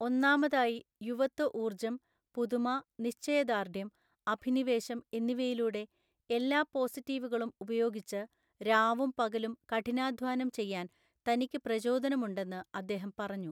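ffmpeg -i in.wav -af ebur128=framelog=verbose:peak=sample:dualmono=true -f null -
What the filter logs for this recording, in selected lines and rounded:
Integrated loudness:
  I:         -30.8 LUFS
  Threshold: -41.0 LUFS
Loudness range:
  LRA:         2.0 LU
  Threshold: -51.2 LUFS
  LRA low:   -32.2 LUFS
  LRA high:  -30.1 LUFS
Sample peak:
  Peak:      -14.2 dBFS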